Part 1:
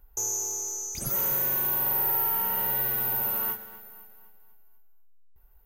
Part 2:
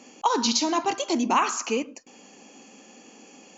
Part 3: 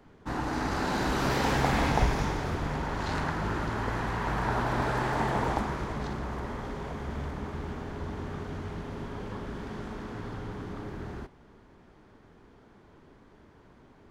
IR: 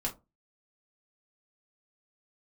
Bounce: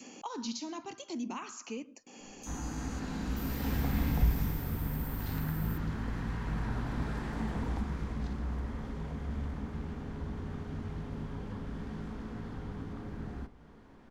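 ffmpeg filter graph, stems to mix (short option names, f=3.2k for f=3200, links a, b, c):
-filter_complex "[0:a]afwtdn=0.0178,adelay=2250,volume=-11dB[a];[1:a]acompressor=mode=upward:threshold=-28dB:ratio=2.5,volume=-7dB,asplit=2[b][c];[2:a]adelay=2200,volume=-3.5dB,asplit=2[d][e];[e]volume=-7.5dB[f];[c]apad=whole_len=719127[g];[d][g]sidechaincompress=threshold=-49dB:ratio=8:attack=16:release=152[h];[3:a]atrim=start_sample=2205[i];[f][i]afir=irnorm=-1:irlink=0[j];[a][b][h][j]amix=inputs=4:normalize=0,adynamicequalizer=threshold=0.00794:dfrequency=770:dqfactor=0.87:tfrequency=770:tqfactor=0.87:attack=5:release=100:ratio=0.375:range=3:mode=cutabove:tftype=bell,acrossover=split=240[k][l];[l]acompressor=threshold=-58dB:ratio=1.5[m];[k][m]amix=inputs=2:normalize=0"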